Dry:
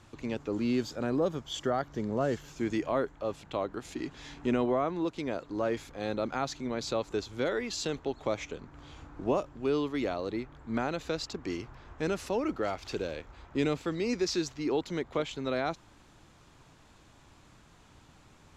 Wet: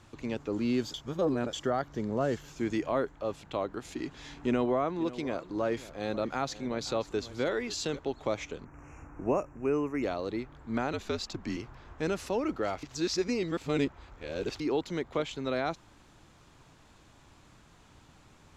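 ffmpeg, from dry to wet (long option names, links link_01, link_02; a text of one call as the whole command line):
ffmpeg -i in.wav -filter_complex "[0:a]asettb=1/sr,asplit=3[link_01][link_02][link_03];[link_01]atrim=end=4.364[link_04];[link_02]atrim=start=4.36:end=7.99,asetpts=PTS-STARTPTS,afade=type=in:duration=0.004:curve=qsin,afade=type=out:start_time=3.626:duration=0.004:curve=qsin,aecho=1:1:533:0.158,atrim=end_sample=160083[link_05];[link_03]atrim=start=7.986[link_06];[link_04][link_05]acrossfade=duration=0.004:curve1=hsin:curve2=qsin[link_07];[link_07][link_06]acrossfade=duration=0.004:curve1=qsin:curve2=hsin,asplit=3[link_08][link_09][link_10];[link_08]afade=type=out:start_time=8.64:duration=0.02[link_11];[link_09]asuperstop=centerf=3900:order=12:qfactor=1.4,afade=type=in:start_time=8.64:duration=0.02,afade=type=out:start_time=10.02:duration=0.02[link_12];[link_10]afade=type=in:start_time=10.02:duration=0.02[link_13];[link_11][link_12][link_13]amix=inputs=3:normalize=0,asettb=1/sr,asplit=3[link_14][link_15][link_16];[link_14]atrim=end=10.934[link_17];[link_15]atrim=start=10.93:end=11.57,asetpts=PTS-STARTPTS,afade=type=in:duration=0.004:curve=qsin,afade=type=out:start_time=0.636:duration=0.004:curve=qsin,afreqshift=-66[link_18];[link_16]atrim=start=11.566[link_19];[link_17][link_18]acrossfade=duration=0.004:curve1=hsin:curve2=qsin[link_20];[link_20][link_19]acrossfade=duration=0.004:curve1=qsin:curve2=hsin,asplit=5[link_21][link_22][link_23][link_24][link_25];[link_21]atrim=end=0.942[link_26];[link_22]atrim=start=0.938:end=1.532,asetpts=PTS-STARTPTS,areverse[link_27];[link_23]atrim=start=1.528:end=12.832[link_28];[link_24]atrim=start=12.828:end=14.602,asetpts=PTS-STARTPTS,areverse[link_29];[link_25]atrim=start=14.598[link_30];[link_26][link_27]acrossfade=duration=0.004:curve1=hsin:curve2=hsin[link_31];[link_31][link_28]acrossfade=duration=0.004:curve1=hsin:curve2=hsin[link_32];[link_32][link_29]acrossfade=duration=0.004:curve1=hsin:curve2=hsin[link_33];[link_33][link_30]acrossfade=duration=0.004:curve1=hsin:curve2=hsin" out.wav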